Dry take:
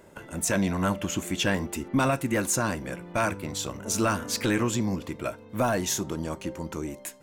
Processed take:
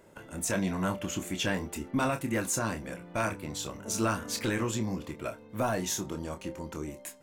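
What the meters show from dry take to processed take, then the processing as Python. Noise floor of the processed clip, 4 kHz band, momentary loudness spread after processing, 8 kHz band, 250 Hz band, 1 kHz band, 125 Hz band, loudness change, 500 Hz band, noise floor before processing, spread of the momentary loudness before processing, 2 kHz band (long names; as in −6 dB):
−52 dBFS, −4.5 dB, 9 LU, −4.5 dB, −4.5 dB, −4.5 dB, −4.5 dB, −4.5 dB, −4.5 dB, −49 dBFS, 10 LU, −4.5 dB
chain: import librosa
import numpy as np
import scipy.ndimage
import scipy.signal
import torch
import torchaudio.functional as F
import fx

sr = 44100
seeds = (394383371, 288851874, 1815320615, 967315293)

y = fx.doubler(x, sr, ms=27.0, db=-8.0)
y = F.gain(torch.from_numpy(y), -5.0).numpy()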